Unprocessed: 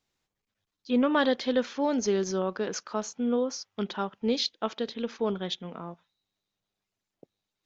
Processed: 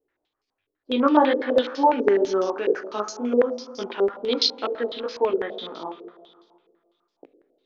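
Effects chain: resonant low shelf 240 Hz -7 dB, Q 3; Schroeder reverb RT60 2 s, combs from 26 ms, DRR 10 dB; chorus 2.1 Hz, delay 15.5 ms, depth 4.7 ms; stepped low-pass 12 Hz 450–5000 Hz; gain +4 dB

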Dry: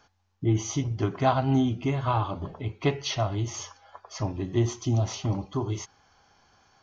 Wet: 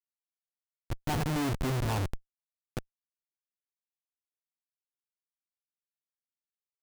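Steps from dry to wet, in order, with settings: Doppler pass-by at 1.62, 43 m/s, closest 6.2 m; Schmitt trigger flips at -33 dBFS; gain +9 dB

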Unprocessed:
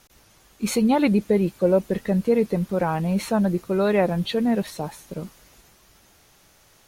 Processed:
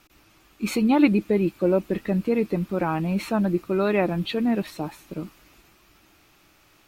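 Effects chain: thirty-one-band EQ 315 Hz +10 dB, 500 Hz -4 dB, 1250 Hz +5 dB, 2500 Hz +7 dB, 6300 Hz -5 dB, 10000 Hz -7 dB; gain -2.5 dB

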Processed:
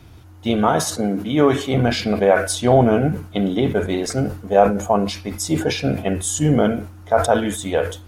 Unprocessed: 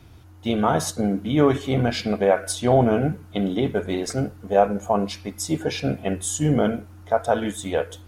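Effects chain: 0.69–1.74 HPF 190 Hz 6 dB/oct; sustainer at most 110 dB/s; gain +3.5 dB

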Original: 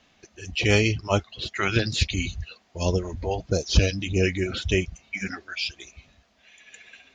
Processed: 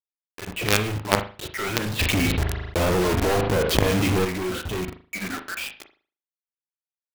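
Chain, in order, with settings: LPF 1800 Hz 12 dB/oct; expander -48 dBFS; HPF 150 Hz 6 dB/oct; companded quantiser 2-bit; reverb, pre-delay 38 ms, DRR 7 dB; 1.99–4.25 fast leveller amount 70%; gain -2 dB

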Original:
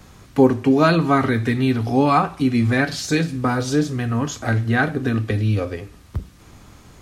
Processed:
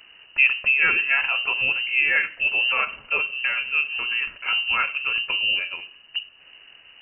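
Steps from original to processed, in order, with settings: inverted band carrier 2900 Hz; gain -4.5 dB

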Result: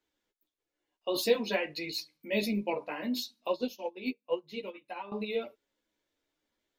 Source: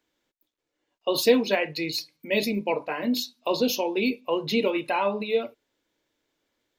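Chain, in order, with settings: chorus voices 6, 0.54 Hz, delay 12 ms, depth 2.7 ms; 3.51–5.12 upward expander 2.5:1, over -37 dBFS; gain -3.5 dB

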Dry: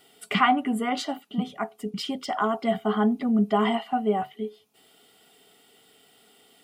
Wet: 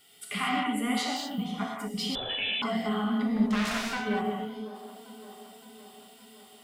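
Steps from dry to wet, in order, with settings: 3.27–4.04 self-modulated delay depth 0.74 ms; bell 500 Hz -11 dB 2.9 oct; limiter -24 dBFS, peak gain reduction 9.5 dB; non-linear reverb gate 0.26 s flat, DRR -3 dB; 2.15–2.62 inverted band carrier 3700 Hz; on a send: band-limited delay 0.564 s, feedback 63%, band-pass 520 Hz, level -13 dB

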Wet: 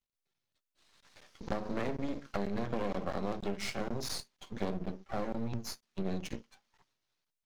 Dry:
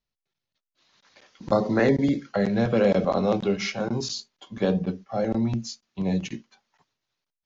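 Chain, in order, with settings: compressor 5:1, threshold -29 dBFS, peak gain reduction 12 dB; half-wave rectifier

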